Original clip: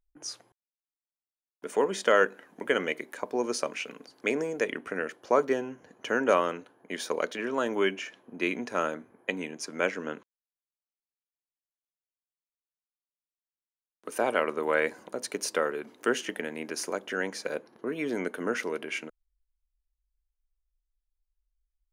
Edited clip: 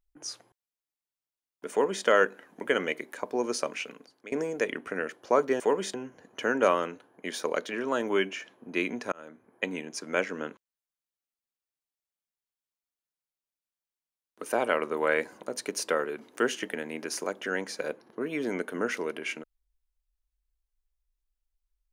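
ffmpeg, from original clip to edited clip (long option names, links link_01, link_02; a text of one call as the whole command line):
ffmpeg -i in.wav -filter_complex "[0:a]asplit=5[link_01][link_02][link_03][link_04][link_05];[link_01]atrim=end=4.32,asetpts=PTS-STARTPTS,afade=type=out:start_time=3.81:duration=0.51:silence=0.0841395[link_06];[link_02]atrim=start=4.32:end=5.602,asetpts=PTS-STARTPTS,afade=type=in:duration=0.004:curve=hsin:silence=0.0841395[link_07];[link_03]atrim=start=1.708:end=2.052[link_08];[link_04]atrim=start=5.598:end=8.78,asetpts=PTS-STARTPTS,afade=type=out:start_time=3.178:duration=0.004:curve=hsin[link_09];[link_05]atrim=start=8.78,asetpts=PTS-STARTPTS,afade=type=in:duration=0.53[link_10];[link_06][link_07]concat=n=2:v=0:a=1[link_11];[link_11][link_08]acrossfade=duration=0.004:curve1=hsin:curve2=hsin[link_12];[link_09][link_10]concat=n=2:v=0:a=1[link_13];[link_12][link_13]acrossfade=duration=0.004:curve1=hsin:curve2=hsin" out.wav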